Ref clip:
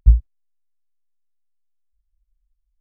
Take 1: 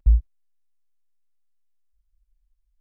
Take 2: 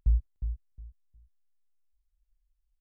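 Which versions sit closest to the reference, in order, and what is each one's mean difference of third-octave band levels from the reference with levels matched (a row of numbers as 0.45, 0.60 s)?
2, 1; 3.5, 5.0 dB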